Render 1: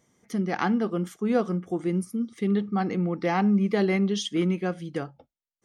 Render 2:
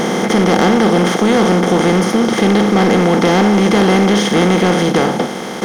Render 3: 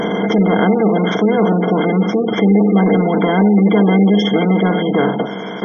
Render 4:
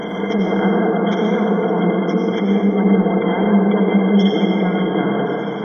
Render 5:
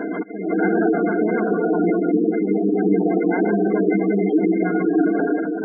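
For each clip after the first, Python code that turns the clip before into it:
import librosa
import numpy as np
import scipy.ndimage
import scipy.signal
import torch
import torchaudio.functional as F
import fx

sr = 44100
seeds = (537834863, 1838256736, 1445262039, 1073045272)

y1 = fx.bin_compress(x, sr, power=0.2)
y1 = fx.leveller(y1, sr, passes=2)
y2 = fx.spec_gate(y1, sr, threshold_db=-20, keep='strong')
y2 = fx.ripple_eq(y2, sr, per_octave=1.7, db=10)
y2 = y2 * 10.0 ** (-2.5 / 20.0)
y3 = fx.rev_plate(y2, sr, seeds[0], rt60_s=2.8, hf_ratio=0.45, predelay_ms=75, drr_db=-1.5)
y3 = y3 * 10.0 ** (-6.5 / 20.0)
y4 = fx.auto_swell(y3, sr, attack_ms=358.0)
y4 = fx.cabinet(y4, sr, low_hz=190.0, low_slope=24, high_hz=2700.0, hz=(200.0, 300.0, 510.0, 920.0, 1500.0), db=(-8, 9, -6, -4, 6))
y4 = fx.spec_gate(y4, sr, threshold_db=-15, keep='strong')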